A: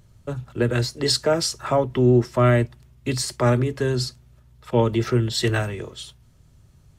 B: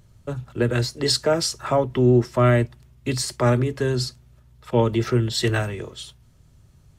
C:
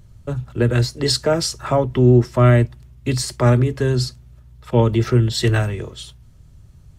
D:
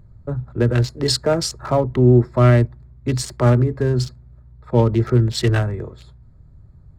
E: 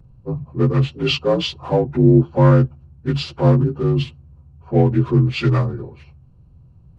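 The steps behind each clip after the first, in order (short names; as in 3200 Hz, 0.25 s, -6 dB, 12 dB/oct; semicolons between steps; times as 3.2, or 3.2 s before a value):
nothing audible
low shelf 130 Hz +9 dB; gain +1.5 dB
Wiener smoothing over 15 samples
inharmonic rescaling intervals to 84%; gain +1.5 dB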